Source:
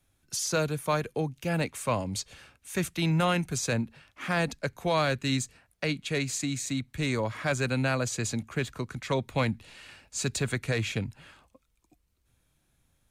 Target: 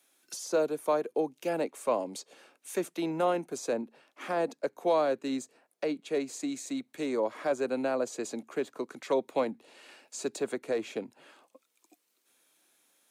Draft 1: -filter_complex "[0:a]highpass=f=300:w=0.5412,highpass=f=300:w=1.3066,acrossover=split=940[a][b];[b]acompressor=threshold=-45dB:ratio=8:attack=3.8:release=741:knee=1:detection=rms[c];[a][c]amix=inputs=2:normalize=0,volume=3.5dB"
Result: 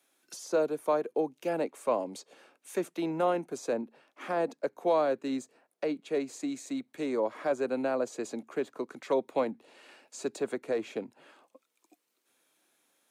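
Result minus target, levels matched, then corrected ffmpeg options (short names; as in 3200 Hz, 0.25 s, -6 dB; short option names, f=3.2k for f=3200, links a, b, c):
4000 Hz band -3.0 dB
-filter_complex "[0:a]highpass=f=300:w=0.5412,highpass=f=300:w=1.3066,acrossover=split=940[a][b];[b]acompressor=threshold=-45dB:ratio=8:attack=3.8:release=741:knee=1:detection=rms,highshelf=f=2.8k:g=5[c];[a][c]amix=inputs=2:normalize=0,volume=3.5dB"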